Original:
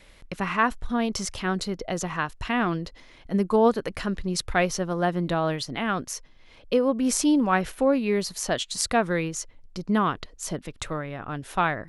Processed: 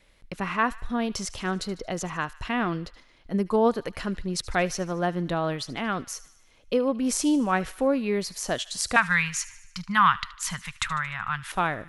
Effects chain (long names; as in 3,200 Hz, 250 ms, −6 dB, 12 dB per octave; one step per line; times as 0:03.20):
noise gate −46 dBFS, range −6 dB
0:08.96–0:11.52: drawn EQ curve 190 Hz 0 dB, 320 Hz −30 dB, 620 Hz −15 dB, 950 Hz +8 dB, 1,900 Hz +13 dB, 6,200 Hz +5 dB
delay with a high-pass on its return 75 ms, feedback 59%, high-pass 1,400 Hz, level −17.5 dB
level −2 dB